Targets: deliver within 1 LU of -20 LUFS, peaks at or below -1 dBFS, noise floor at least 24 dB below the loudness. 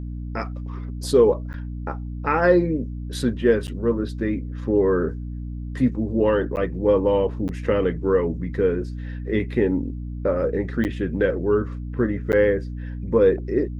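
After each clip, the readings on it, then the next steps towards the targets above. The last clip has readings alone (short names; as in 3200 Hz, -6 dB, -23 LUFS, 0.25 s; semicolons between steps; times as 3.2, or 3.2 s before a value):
dropouts 6; longest dropout 9.3 ms; hum 60 Hz; harmonics up to 300 Hz; hum level -28 dBFS; loudness -22.5 LUFS; peak -5.5 dBFS; loudness target -20.0 LUFS
-> interpolate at 1.53/3.67/6.56/7.48/10.84/12.32, 9.3 ms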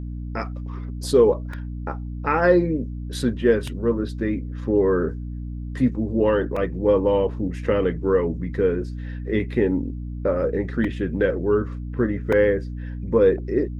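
dropouts 0; hum 60 Hz; harmonics up to 300 Hz; hum level -28 dBFS
-> notches 60/120/180/240/300 Hz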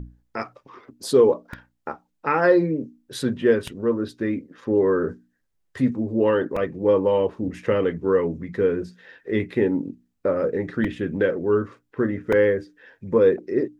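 hum none; loudness -22.5 LUFS; peak -6.0 dBFS; loudness target -20.0 LUFS
-> gain +2.5 dB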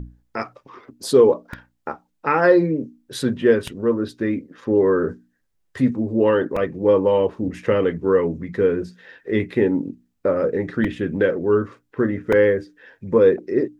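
loudness -20.0 LUFS; peak -3.5 dBFS; noise floor -70 dBFS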